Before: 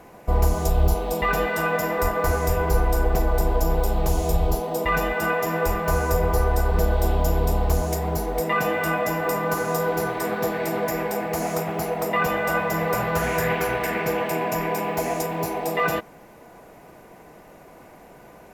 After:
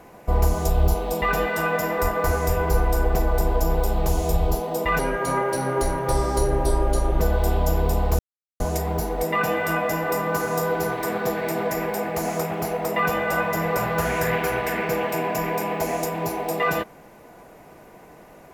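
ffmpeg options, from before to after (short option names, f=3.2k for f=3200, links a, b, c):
-filter_complex "[0:a]asplit=4[a][b][c][d];[a]atrim=end=4.994[e];[b]atrim=start=4.99:end=6.78,asetpts=PTS-STARTPTS,asetrate=35721,aresample=44100[f];[c]atrim=start=6.776:end=7.77,asetpts=PTS-STARTPTS,afade=t=out:st=0.99:d=0.004:c=hsin,apad=pad_dur=0.41[g];[d]atrim=start=7.77,asetpts=PTS-STARTPTS,afade=t=in:d=0.004:c=hsin[h];[e][f]acrossfade=d=0.004:c1=hsin:c2=hsin[i];[g][h]concat=n=2:v=0:a=1[j];[i][j]acrossfade=d=0.004:c1=hsin:c2=hsin"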